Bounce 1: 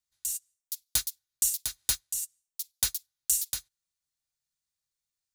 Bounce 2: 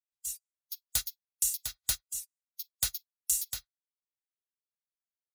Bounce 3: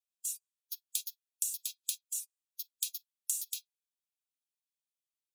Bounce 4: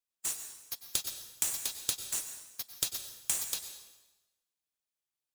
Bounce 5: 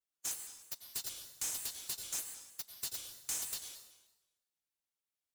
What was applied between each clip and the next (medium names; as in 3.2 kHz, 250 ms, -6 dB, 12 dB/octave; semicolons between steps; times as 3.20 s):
spectral noise reduction 22 dB; comb 1.5 ms, depth 31%; trim -3 dB
compression, threshold -31 dBFS, peak gain reduction 7.5 dB; rippled Chebyshev high-pass 2.4 kHz, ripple 3 dB; trim +1.5 dB
square wave that keeps the level; plate-style reverb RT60 1.1 s, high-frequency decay 0.9×, pre-delay 85 ms, DRR 8 dB
overload inside the chain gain 31 dB; vibrato with a chosen wave square 3.2 Hz, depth 160 cents; trim -3 dB